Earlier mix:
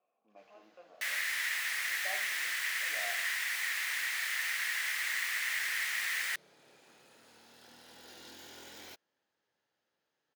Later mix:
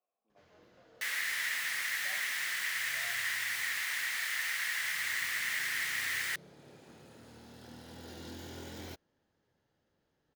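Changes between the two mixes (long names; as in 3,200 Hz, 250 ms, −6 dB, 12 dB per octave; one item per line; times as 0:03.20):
speech −9.5 dB
first sound: remove high-pass filter 970 Hz 6 dB per octave
master: add parametric band 2,500 Hz −2.5 dB 0.21 octaves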